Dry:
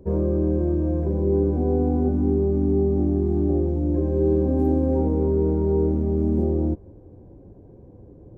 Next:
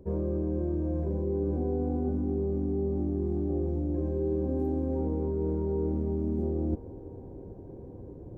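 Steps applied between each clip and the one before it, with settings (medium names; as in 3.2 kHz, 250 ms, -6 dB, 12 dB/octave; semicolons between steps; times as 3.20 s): reverse; compression 6:1, threshold -28 dBFS, peak gain reduction 11.5 dB; reverse; feedback echo behind a band-pass 332 ms, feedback 82%, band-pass 630 Hz, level -15.5 dB; trim +1 dB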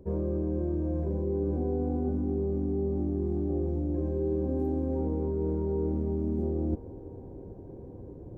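no audible change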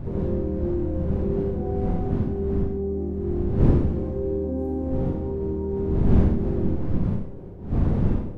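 wind noise 150 Hz -27 dBFS; Schroeder reverb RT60 0.62 s, combs from 31 ms, DRR 1 dB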